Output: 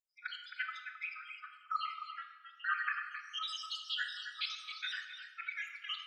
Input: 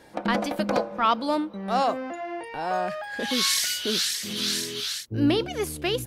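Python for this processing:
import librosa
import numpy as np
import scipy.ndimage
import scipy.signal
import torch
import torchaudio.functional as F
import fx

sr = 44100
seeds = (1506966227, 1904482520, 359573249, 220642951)

y = fx.spec_dropout(x, sr, seeds[0], share_pct=80)
y = fx.brickwall_highpass(y, sr, low_hz=1200.0)
y = y + 10.0 ** (-9.0 / 20.0) * np.pad(y, (int(265 * sr / 1000.0), 0))[:len(y)]
y = fx.dereverb_blind(y, sr, rt60_s=0.7)
y = scipy.signal.sosfilt(scipy.signal.butter(2, 2000.0, 'lowpass', fs=sr, output='sos'), y)
y = fx.pitch_keep_formants(y, sr, semitones=-1.0)
y = fx.tilt_eq(y, sr, slope=-3.0)
y = fx.room_shoebox(y, sr, seeds[1], volume_m3=1300.0, walls='mixed', distance_m=1.1)
y = y * librosa.db_to_amplitude(9.5)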